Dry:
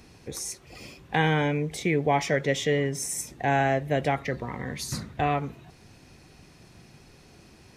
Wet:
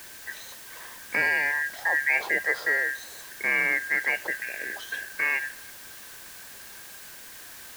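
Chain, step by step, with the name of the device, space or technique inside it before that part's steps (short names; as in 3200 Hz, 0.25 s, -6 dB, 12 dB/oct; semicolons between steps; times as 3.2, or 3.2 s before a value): split-band scrambled radio (four-band scrambler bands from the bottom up 2143; BPF 350–2900 Hz; white noise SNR 15 dB)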